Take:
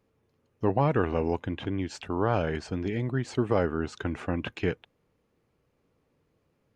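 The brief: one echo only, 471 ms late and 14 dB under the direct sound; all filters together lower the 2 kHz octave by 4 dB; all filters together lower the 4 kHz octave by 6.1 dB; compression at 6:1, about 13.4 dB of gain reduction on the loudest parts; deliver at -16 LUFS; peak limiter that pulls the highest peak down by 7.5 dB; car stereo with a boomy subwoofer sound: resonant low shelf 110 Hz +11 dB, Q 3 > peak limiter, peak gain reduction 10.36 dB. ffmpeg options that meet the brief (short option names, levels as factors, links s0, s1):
-af "equalizer=f=2000:t=o:g=-4,equalizer=f=4000:t=o:g=-7,acompressor=threshold=0.02:ratio=6,alimiter=level_in=1.5:limit=0.0631:level=0:latency=1,volume=0.668,lowshelf=f=110:t=q:w=3:g=11,aecho=1:1:471:0.2,volume=16.8,alimiter=limit=0.398:level=0:latency=1"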